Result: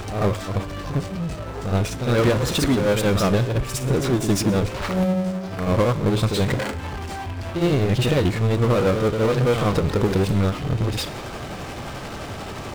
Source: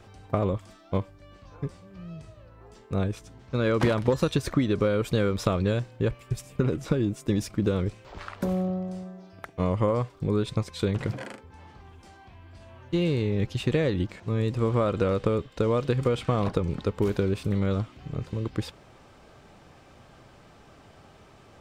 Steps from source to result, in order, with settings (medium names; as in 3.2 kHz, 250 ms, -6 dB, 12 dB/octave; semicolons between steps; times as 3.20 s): pre-echo 115 ms -12.5 dB; power-law waveshaper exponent 0.5; on a send: thinning echo 96 ms, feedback 58%, level -13.5 dB; on the sum: granular stretch 0.59×, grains 176 ms